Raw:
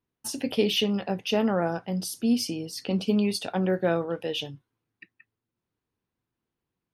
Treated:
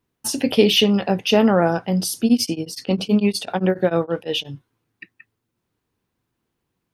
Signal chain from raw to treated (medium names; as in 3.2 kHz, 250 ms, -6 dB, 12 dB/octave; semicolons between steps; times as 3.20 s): 2.24–4.50 s: tremolo of two beating tones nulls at 12 Hz -> 4.9 Hz; trim +9 dB